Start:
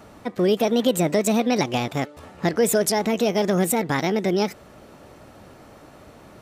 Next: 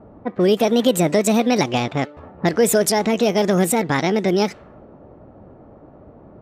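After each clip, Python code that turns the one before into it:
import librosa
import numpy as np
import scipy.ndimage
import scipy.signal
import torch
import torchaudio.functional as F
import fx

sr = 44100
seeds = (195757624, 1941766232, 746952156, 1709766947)

y = fx.env_lowpass(x, sr, base_hz=620.0, full_db=-17.0)
y = y * librosa.db_to_amplitude(3.5)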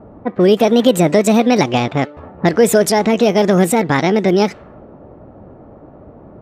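y = fx.high_shelf(x, sr, hz=4500.0, db=-6.0)
y = y * librosa.db_to_amplitude(5.0)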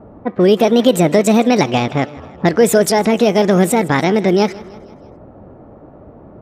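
y = fx.echo_feedback(x, sr, ms=160, feedback_pct=54, wet_db=-20.5)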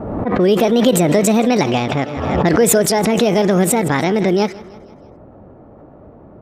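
y = fx.pre_swell(x, sr, db_per_s=38.0)
y = y * librosa.db_to_amplitude(-2.5)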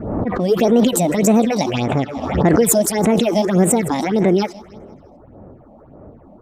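y = fx.phaser_stages(x, sr, stages=6, low_hz=100.0, high_hz=5000.0, hz=1.7, feedback_pct=25)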